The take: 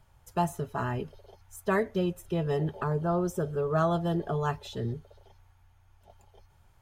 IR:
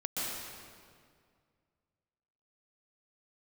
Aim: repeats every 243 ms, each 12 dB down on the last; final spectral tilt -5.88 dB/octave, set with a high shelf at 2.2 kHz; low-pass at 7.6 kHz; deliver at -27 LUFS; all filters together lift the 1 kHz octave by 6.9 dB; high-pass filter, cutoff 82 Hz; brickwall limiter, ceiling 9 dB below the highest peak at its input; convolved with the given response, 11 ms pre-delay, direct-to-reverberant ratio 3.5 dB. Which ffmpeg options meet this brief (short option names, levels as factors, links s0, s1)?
-filter_complex "[0:a]highpass=82,lowpass=7600,equalizer=f=1000:t=o:g=7.5,highshelf=f=2200:g=7,alimiter=limit=0.133:level=0:latency=1,aecho=1:1:243|486|729:0.251|0.0628|0.0157,asplit=2[s0][s1];[1:a]atrim=start_sample=2205,adelay=11[s2];[s1][s2]afir=irnorm=-1:irlink=0,volume=0.355[s3];[s0][s3]amix=inputs=2:normalize=0,volume=1.12"